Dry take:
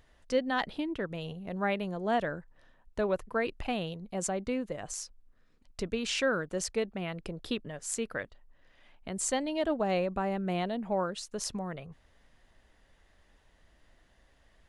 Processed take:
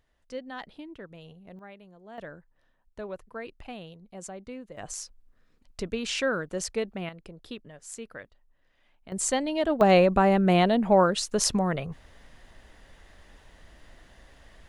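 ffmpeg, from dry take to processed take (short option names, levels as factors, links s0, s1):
-af "asetnsamples=n=441:p=0,asendcmd='1.59 volume volume -17dB;2.18 volume volume -8dB;4.77 volume volume 1.5dB;7.09 volume volume -6.5dB;9.12 volume volume 4dB;9.81 volume volume 11dB',volume=0.355"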